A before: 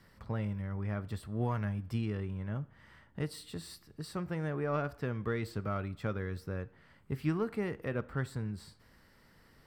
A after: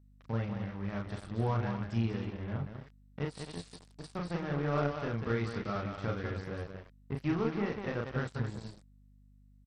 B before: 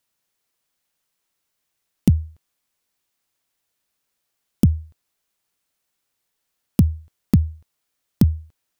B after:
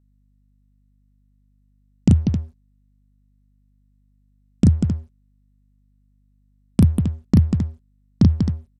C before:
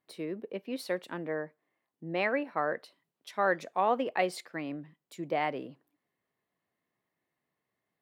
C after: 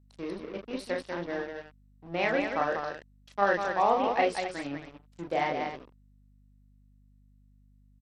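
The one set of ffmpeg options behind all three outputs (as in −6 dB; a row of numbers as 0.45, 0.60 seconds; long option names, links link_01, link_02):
-af "equalizer=frequency=800:width=4.8:gain=3.5,aecho=1:1:34.99|192.4|265.3:0.794|0.562|0.355,aeval=exprs='sgn(val(0))*max(abs(val(0))-0.00708,0)':channel_layout=same,aeval=exprs='val(0)+0.00112*(sin(2*PI*50*n/s)+sin(2*PI*2*50*n/s)/2+sin(2*PI*3*50*n/s)/3+sin(2*PI*4*50*n/s)/4+sin(2*PI*5*50*n/s)/5)':channel_layout=same" -ar 32000 -c:a sbc -b:a 64k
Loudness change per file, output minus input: +1.0, +2.0, +2.5 LU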